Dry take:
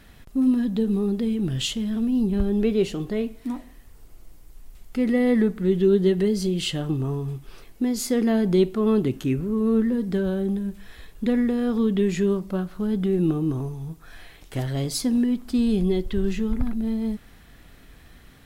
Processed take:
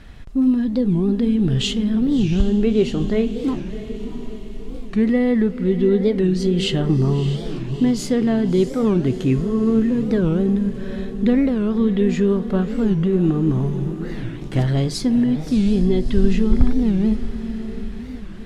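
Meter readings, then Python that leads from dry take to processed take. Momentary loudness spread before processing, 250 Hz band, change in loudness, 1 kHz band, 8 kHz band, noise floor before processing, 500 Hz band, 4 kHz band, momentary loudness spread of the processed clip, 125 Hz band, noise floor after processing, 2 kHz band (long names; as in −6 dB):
10 LU, +4.5 dB, +4.5 dB, +3.5 dB, −1.0 dB, −50 dBFS, +3.0 dB, +3.5 dB, 11 LU, +7.5 dB, −32 dBFS, +3.5 dB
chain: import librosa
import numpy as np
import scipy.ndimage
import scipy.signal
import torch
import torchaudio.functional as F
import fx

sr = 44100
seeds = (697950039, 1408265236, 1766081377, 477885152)

p1 = fx.low_shelf(x, sr, hz=110.0, db=6.5)
p2 = fx.rider(p1, sr, range_db=3, speed_s=0.5)
p3 = fx.air_absorb(p2, sr, metres=63.0)
p4 = p3 + fx.echo_diffused(p3, sr, ms=656, feedback_pct=52, wet_db=-11, dry=0)
p5 = fx.record_warp(p4, sr, rpm=45.0, depth_cents=250.0)
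y = p5 * librosa.db_to_amplitude(3.5)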